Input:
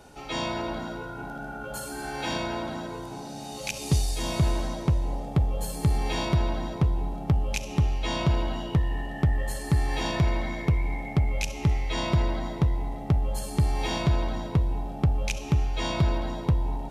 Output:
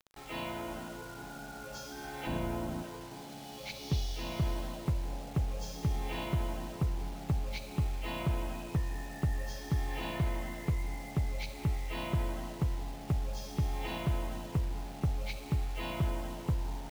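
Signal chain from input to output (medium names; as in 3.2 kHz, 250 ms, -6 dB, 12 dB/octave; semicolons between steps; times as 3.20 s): knee-point frequency compression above 1.9 kHz 1.5:1; 2.27–2.83 s: tilt EQ -3 dB/octave; bit crusher 7-bit; trim -8.5 dB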